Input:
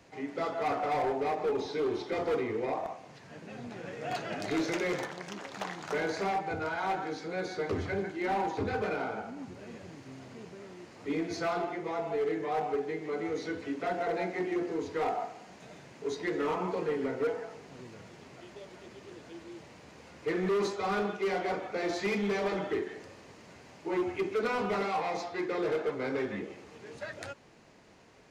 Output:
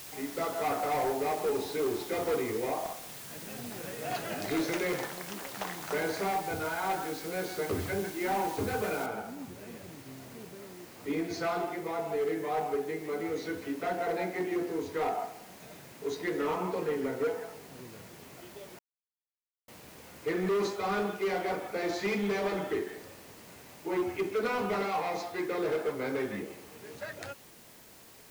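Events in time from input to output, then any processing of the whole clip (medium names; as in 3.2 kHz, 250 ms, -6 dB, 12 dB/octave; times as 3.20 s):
9.06 s: noise floor step -46 dB -56 dB
18.79–19.68 s: mute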